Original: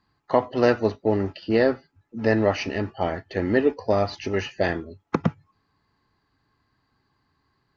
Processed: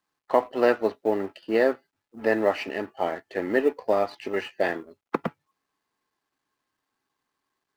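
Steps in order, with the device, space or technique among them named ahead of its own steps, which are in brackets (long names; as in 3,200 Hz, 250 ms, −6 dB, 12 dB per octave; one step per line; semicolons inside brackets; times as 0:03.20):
phone line with mismatched companding (band-pass filter 310–3,400 Hz; mu-law and A-law mismatch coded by A)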